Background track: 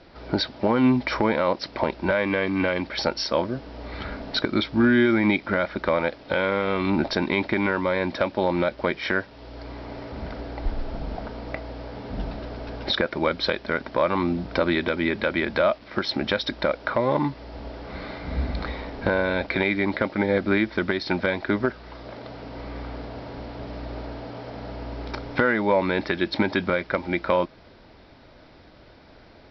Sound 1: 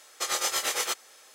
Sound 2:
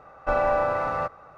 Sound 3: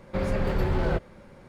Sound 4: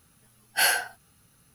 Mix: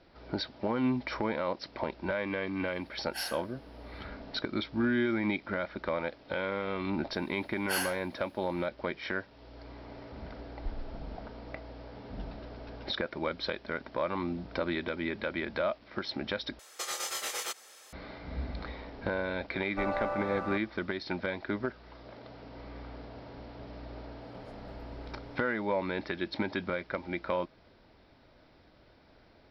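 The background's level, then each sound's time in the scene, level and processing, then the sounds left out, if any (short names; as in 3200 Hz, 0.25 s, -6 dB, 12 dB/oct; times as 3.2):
background track -10 dB
2.57 add 4 -17.5 dB, fades 0.10 s
7.12 add 4 -10.5 dB
16.59 replace with 1 -0.5 dB + compressor 3:1, threshold -33 dBFS
19.5 add 2 -10.5 dB
24.21 add 3 -15.5 dB + compressor 10:1, threshold -33 dBFS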